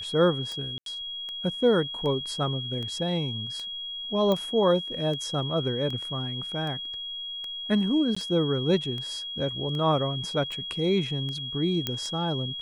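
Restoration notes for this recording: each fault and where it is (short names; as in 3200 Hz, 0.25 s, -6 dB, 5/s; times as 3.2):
tick 78 rpm -24 dBFS
tone 3300 Hz -33 dBFS
0.78–0.86 gap 82 ms
4.32 pop -15 dBFS
8.15–8.16 gap 15 ms
11.87 pop -12 dBFS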